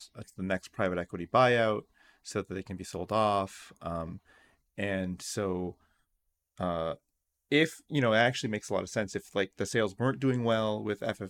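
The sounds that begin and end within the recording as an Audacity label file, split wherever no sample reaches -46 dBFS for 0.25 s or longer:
2.260000	4.180000	sound
4.780000	5.720000	sound
6.580000	6.950000	sound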